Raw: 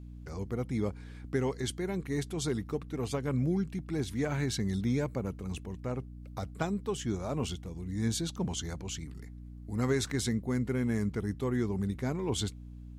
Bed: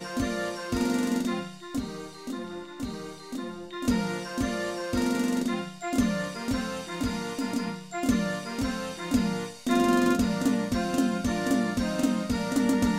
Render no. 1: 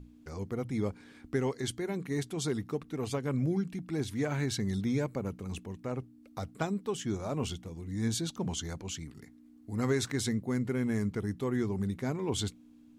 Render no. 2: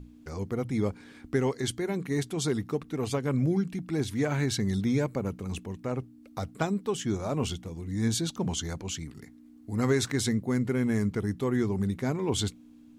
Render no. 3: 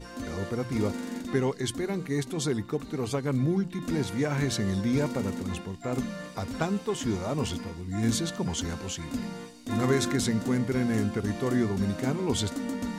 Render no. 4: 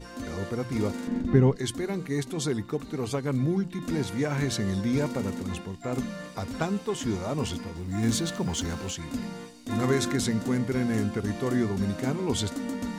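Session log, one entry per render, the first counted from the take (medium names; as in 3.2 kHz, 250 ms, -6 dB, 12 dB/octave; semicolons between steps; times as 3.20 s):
hum notches 60/120/180 Hz
trim +4 dB
add bed -8.5 dB
1.07–1.56 s: RIAA curve playback; 7.75–8.91 s: companding laws mixed up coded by mu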